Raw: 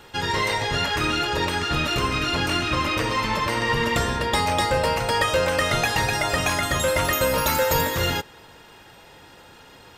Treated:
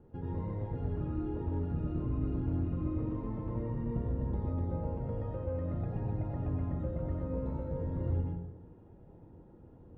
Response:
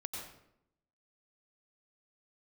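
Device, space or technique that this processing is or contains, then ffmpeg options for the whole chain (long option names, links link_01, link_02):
television next door: -filter_complex "[0:a]acompressor=threshold=-26dB:ratio=4,lowpass=300[link_01];[1:a]atrim=start_sample=2205[link_02];[link_01][link_02]afir=irnorm=-1:irlink=0"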